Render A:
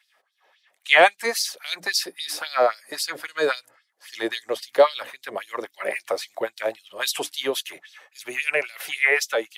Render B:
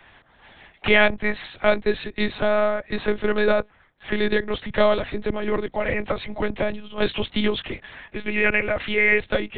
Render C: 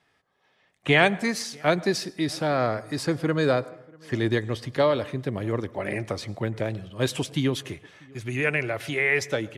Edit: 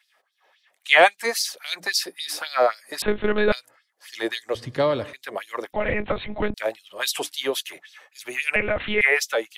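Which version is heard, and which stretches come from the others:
A
3.02–3.52 s: from B
4.55–5.13 s: from C
5.73–6.54 s: from B
8.56–9.01 s: from B

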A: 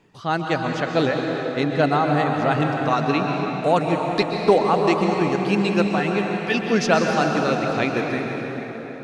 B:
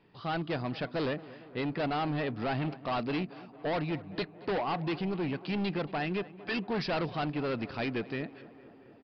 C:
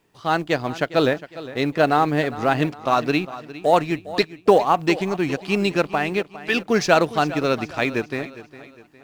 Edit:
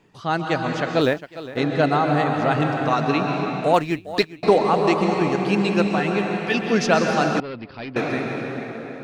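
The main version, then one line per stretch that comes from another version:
A
1.01–1.57 s: from C
3.74–4.43 s: from C
7.40–7.96 s: from B

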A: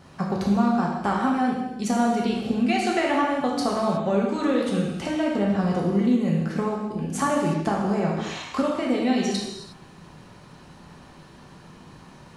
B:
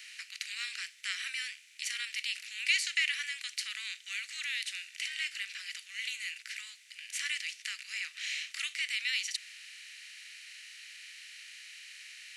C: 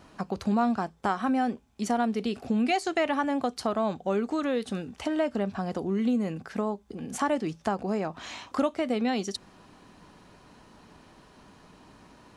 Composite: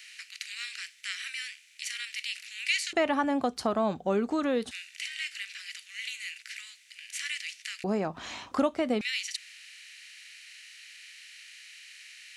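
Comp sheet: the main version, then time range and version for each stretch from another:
B
2.93–4.71 s: from C
7.84–9.01 s: from C
not used: A

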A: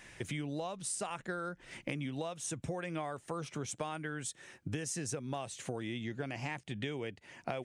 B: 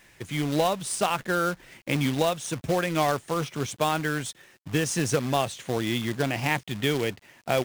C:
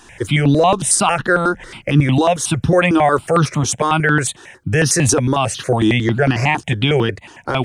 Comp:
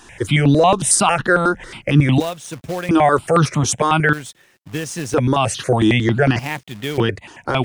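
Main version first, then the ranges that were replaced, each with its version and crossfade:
C
2.20–2.89 s: from B
4.13–5.14 s: from B
6.39–6.98 s: from B
not used: A

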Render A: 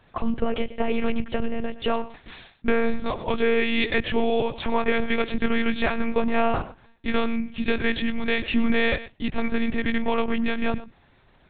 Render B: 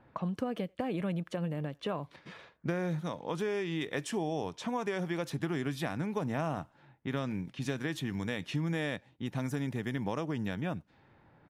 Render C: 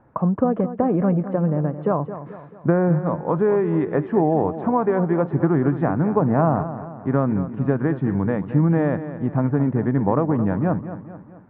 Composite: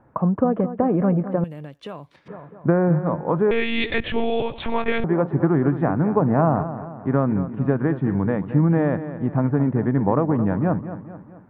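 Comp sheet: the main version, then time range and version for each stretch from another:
C
1.44–2.28 s: from B
3.51–5.04 s: from A

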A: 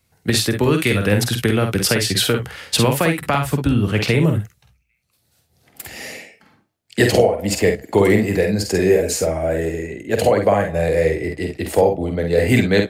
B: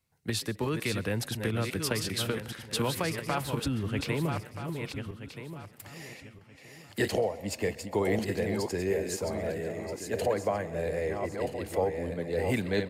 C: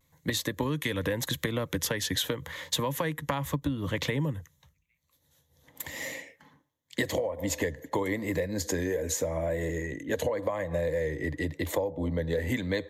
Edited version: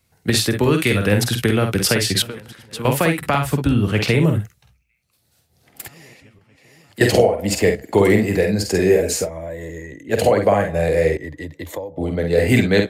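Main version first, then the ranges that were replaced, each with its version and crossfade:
A
2.22–2.85 s: from B
5.88–7.01 s: from B
9.26–10.08 s: from C, crossfade 0.10 s
11.17–11.97 s: from C

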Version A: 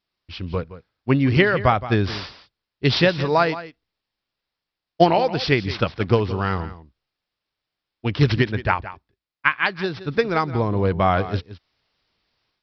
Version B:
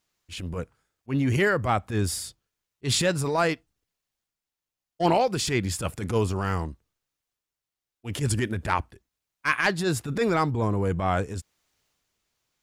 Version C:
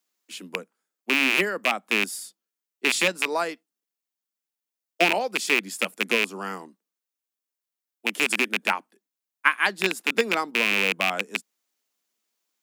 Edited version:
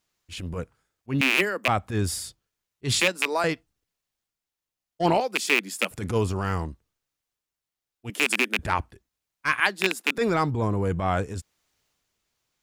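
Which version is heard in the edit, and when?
B
1.21–1.68 s: from C
3.00–3.44 s: from C
5.20–5.91 s: from C
8.10–8.59 s: from C
9.60–10.18 s: from C
not used: A

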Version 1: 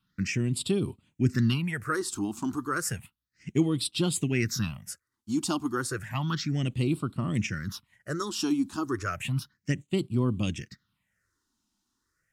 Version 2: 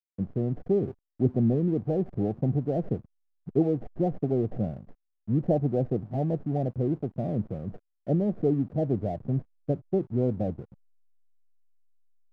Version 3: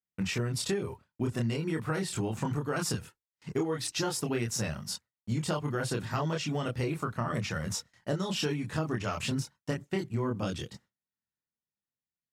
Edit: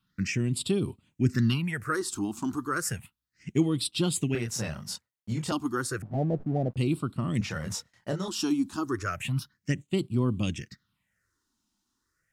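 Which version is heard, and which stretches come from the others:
1
4.35–5.52 s: from 3
6.02–6.77 s: from 2
7.41–8.28 s: from 3

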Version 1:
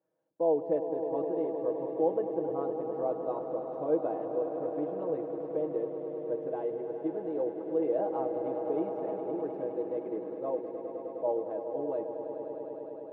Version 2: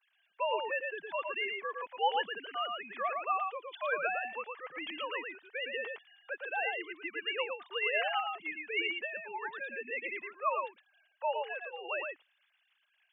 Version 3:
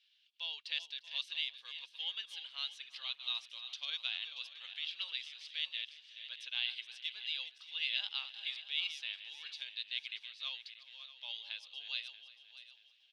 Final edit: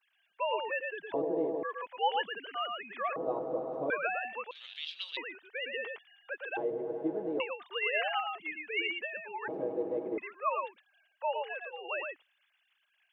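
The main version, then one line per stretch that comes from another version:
2
1.14–1.63 s: from 1
3.16–3.90 s: from 1
4.51–5.17 s: from 3
6.57–7.40 s: from 1
9.48–10.18 s: from 1

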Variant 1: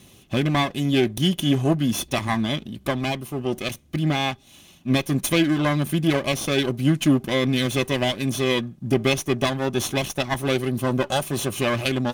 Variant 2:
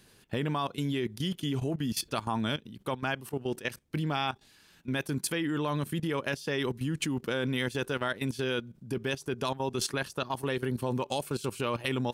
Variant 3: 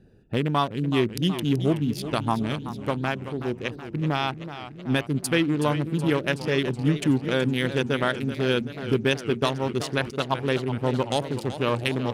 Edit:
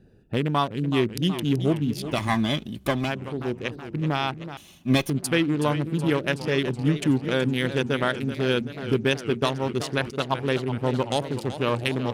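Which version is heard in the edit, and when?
3
2.16–3.08 s: from 1, crossfade 0.10 s
4.57–5.10 s: from 1
not used: 2

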